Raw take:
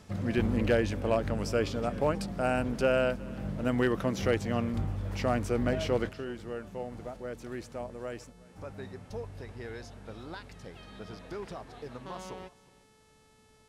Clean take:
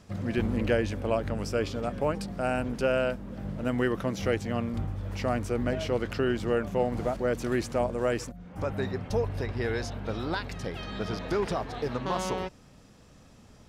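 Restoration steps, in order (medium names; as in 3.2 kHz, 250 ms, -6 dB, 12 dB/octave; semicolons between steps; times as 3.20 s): clip repair -16.5 dBFS; de-hum 436.1 Hz, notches 26; inverse comb 364 ms -22.5 dB; trim 0 dB, from 6.09 s +11.5 dB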